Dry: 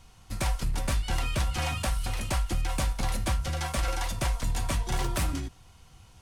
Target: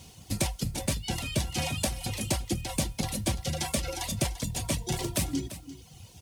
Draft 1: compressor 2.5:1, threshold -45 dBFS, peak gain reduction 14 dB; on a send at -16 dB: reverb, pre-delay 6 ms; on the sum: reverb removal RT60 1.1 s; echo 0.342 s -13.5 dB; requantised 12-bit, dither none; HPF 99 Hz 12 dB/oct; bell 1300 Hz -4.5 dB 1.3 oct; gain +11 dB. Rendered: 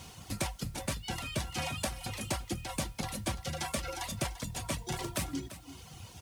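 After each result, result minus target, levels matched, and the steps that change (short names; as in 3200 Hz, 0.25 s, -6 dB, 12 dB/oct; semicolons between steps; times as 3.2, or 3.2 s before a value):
compressor: peak gain reduction +7 dB; 1000 Hz band +4.0 dB
change: compressor 2.5:1, threshold -33.5 dBFS, peak gain reduction 7 dB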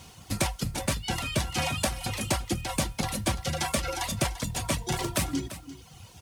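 1000 Hz band +4.0 dB
change: bell 1300 Hz -14.5 dB 1.3 oct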